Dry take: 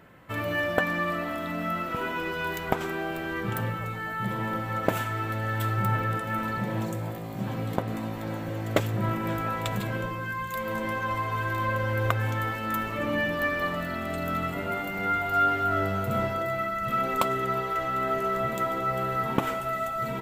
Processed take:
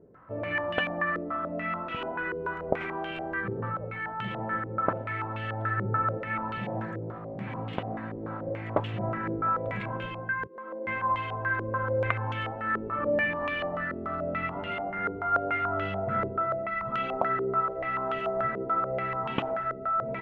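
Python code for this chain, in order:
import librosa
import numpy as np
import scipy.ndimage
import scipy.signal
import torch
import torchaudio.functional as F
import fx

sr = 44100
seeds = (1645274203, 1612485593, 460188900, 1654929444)

y = fx.ladder_highpass(x, sr, hz=250.0, resonance_pct=45, at=(10.46, 10.86), fade=0.02)
y = fx.filter_held_lowpass(y, sr, hz=6.9, low_hz=430.0, high_hz=2900.0)
y = F.gain(torch.from_numpy(y), -5.5).numpy()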